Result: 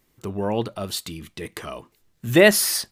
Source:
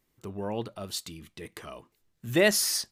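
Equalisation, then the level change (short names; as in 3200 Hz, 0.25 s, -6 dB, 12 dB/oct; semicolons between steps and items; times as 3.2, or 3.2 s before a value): dynamic EQ 6100 Hz, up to -7 dB, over -43 dBFS, Q 1.3; +8.5 dB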